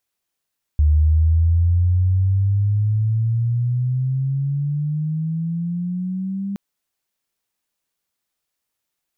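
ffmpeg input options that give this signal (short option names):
-f lavfi -i "aevalsrc='pow(10,(-11-11.5*t/5.77)/20)*sin(2*PI*74*5.77/log(200/74)*(exp(log(200/74)*t/5.77)-1))':d=5.77:s=44100"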